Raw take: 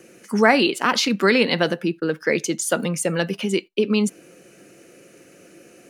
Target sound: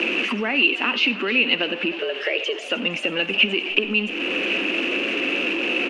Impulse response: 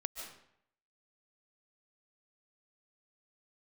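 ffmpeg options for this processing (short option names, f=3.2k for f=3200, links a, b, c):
-filter_complex "[0:a]aeval=exprs='val(0)+0.5*0.0562*sgn(val(0))':c=same,lowshelf=f=180:t=q:w=3:g=-12,acompressor=threshold=-27dB:ratio=6,lowpass=f=2.7k:t=q:w=13,asettb=1/sr,asplit=3[a][b][c];[a]atrim=end=1.994[d];[b]atrim=start=1.99:end=2.59,asetpts=PTS-STARTPTS,afade=t=in:d=0.004:c=qsin,afade=t=out:st=0.596:d=0.004:c=qsin,afreqshift=110[e];[c]atrim=start=2.586[f];[d][e]acrossfade=d=0.004:c1=hsin:c2=qsin[g];[g][f]acrossfade=d=0.004:c1=qsin:c2=hsin,asplit=7[h][i][j][k][l][m][n];[i]adelay=312,afreqshift=66,volume=-17dB[o];[j]adelay=624,afreqshift=132,volume=-21.6dB[p];[k]adelay=936,afreqshift=198,volume=-26.2dB[q];[l]adelay=1248,afreqshift=264,volume=-30.7dB[r];[m]adelay=1560,afreqshift=330,volume=-35.3dB[s];[n]adelay=1872,afreqshift=396,volume=-39.9dB[t];[h][o][p][q][r][s][t]amix=inputs=7:normalize=0,asplit=2[u][v];[1:a]atrim=start_sample=2205,asetrate=83790,aresample=44100[w];[v][w]afir=irnorm=-1:irlink=0,volume=-3dB[x];[u][x]amix=inputs=2:normalize=0"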